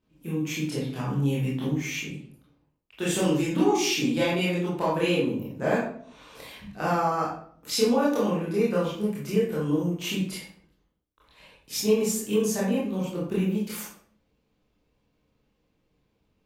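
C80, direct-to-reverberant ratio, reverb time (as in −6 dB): 6.5 dB, −8.0 dB, 0.55 s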